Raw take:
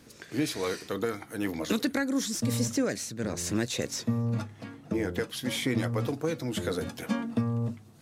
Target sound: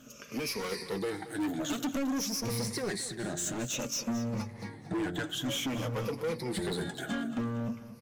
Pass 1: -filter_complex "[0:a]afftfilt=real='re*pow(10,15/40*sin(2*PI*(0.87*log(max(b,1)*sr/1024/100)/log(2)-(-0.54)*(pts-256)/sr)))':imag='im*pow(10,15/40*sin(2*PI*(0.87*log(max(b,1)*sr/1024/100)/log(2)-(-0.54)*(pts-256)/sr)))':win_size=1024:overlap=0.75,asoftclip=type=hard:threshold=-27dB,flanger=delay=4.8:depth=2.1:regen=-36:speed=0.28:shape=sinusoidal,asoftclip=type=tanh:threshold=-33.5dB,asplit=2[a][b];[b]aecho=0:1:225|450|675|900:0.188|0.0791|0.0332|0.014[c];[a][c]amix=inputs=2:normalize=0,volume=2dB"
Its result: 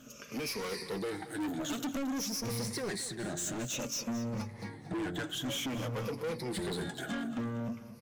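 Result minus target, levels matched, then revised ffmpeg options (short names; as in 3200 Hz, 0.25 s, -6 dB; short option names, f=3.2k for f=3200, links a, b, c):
soft clip: distortion +11 dB
-filter_complex "[0:a]afftfilt=real='re*pow(10,15/40*sin(2*PI*(0.87*log(max(b,1)*sr/1024/100)/log(2)-(-0.54)*(pts-256)/sr)))':imag='im*pow(10,15/40*sin(2*PI*(0.87*log(max(b,1)*sr/1024/100)/log(2)-(-0.54)*(pts-256)/sr)))':win_size=1024:overlap=0.75,asoftclip=type=hard:threshold=-27dB,flanger=delay=4.8:depth=2.1:regen=-36:speed=0.28:shape=sinusoidal,asoftclip=type=tanh:threshold=-26dB,asplit=2[a][b];[b]aecho=0:1:225|450|675|900:0.188|0.0791|0.0332|0.014[c];[a][c]amix=inputs=2:normalize=0,volume=2dB"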